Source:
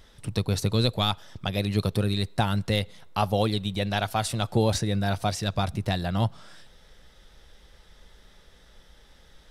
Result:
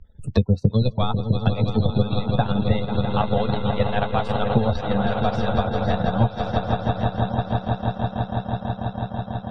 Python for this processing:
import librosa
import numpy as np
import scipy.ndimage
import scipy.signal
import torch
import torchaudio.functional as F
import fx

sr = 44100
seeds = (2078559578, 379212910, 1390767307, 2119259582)

y = fx.noise_reduce_blind(x, sr, reduce_db=24)
y = fx.tilt_eq(y, sr, slope=-2.0)
y = fx.echo_swell(y, sr, ms=164, loudest=5, wet_db=-8.5)
y = fx.spec_gate(y, sr, threshold_db=-30, keep='strong')
y = scipy.signal.sosfilt(scipy.signal.butter(2, 3700.0, 'lowpass', fs=sr, output='sos'), y)
y = fx.peak_eq(y, sr, hz=340.0, db=-11.0, octaves=0.37)
y = y + 10.0 ** (-11.0 / 20.0) * np.pad(y, (int(1100 * sr / 1000.0), 0))[:len(y)]
y = fx.transient(y, sr, attack_db=8, sustain_db=-9)
y = fx.doubler(y, sr, ms=14.0, db=-13.0)
y = fx.band_squash(y, sr, depth_pct=70)